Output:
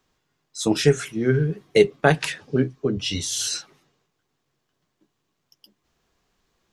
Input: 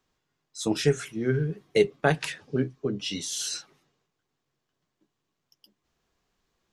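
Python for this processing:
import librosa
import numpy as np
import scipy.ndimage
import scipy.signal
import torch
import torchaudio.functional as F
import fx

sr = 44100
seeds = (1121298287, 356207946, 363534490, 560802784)

y = fx.low_shelf_res(x, sr, hz=140.0, db=10.0, q=1.5, at=(2.97, 3.48))
y = y * librosa.db_to_amplitude(5.5)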